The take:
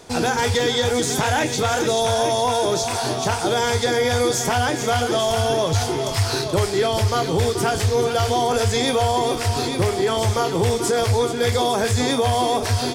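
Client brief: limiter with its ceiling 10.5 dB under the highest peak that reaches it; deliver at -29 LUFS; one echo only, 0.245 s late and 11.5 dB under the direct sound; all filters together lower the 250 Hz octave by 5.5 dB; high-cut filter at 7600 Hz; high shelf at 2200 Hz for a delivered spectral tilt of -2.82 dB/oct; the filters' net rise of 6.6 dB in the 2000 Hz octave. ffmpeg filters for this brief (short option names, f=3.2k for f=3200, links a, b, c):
-af "lowpass=7.6k,equalizer=f=250:t=o:g=-7.5,equalizer=f=2k:t=o:g=6,highshelf=f=2.2k:g=5,alimiter=limit=-16.5dB:level=0:latency=1,aecho=1:1:245:0.266,volume=-5dB"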